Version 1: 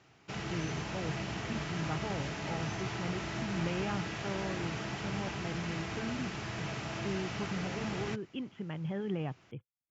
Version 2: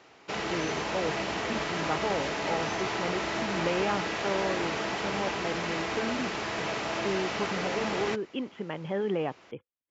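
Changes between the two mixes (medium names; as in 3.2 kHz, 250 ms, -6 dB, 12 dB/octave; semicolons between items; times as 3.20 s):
background: remove distance through air 50 m; master: add graphic EQ 125/250/500/1000/2000/4000 Hz -8/+4/+10/+7/+5/+6 dB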